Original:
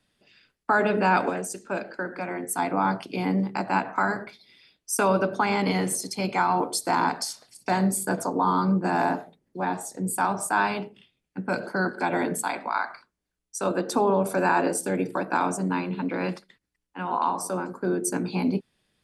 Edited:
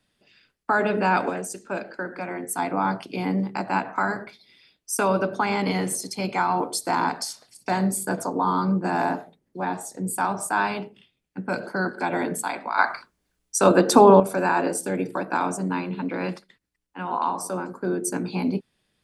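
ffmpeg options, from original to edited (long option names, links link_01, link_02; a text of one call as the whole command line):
ffmpeg -i in.wav -filter_complex "[0:a]asplit=3[link_01][link_02][link_03];[link_01]atrim=end=12.782[link_04];[link_02]atrim=start=12.778:end=14.202,asetpts=PTS-STARTPTS,volume=9.5dB[link_05];[link_03]atrim=start=14.198[link_06];[link_04][link_05]acrossfade=duration=0.004:curve1=hsin:curve2=hsin[link_07];[link_07][link_06]acrossfade=duration=0.004:curve1=hsin:curve2=hsin" out.wav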